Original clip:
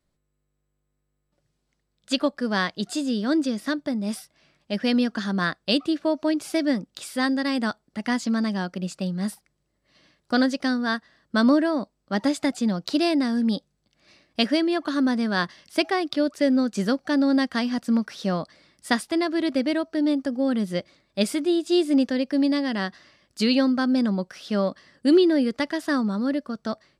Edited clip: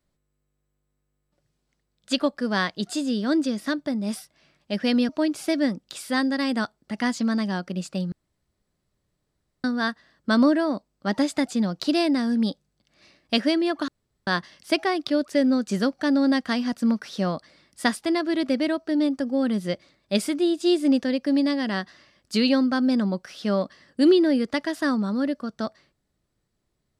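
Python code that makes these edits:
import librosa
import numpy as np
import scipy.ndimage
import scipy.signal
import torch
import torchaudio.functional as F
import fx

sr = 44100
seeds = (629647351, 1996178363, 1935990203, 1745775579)

y = fx.edit(x, sr, fx.cut(start_s=5.09, length_s=1.06),
    fx.room_tone_fill(start_s=9.18, length_s=1.52),
    fx.room_tone_fill(start_s=14.94, length_s=0.39), tone=tone)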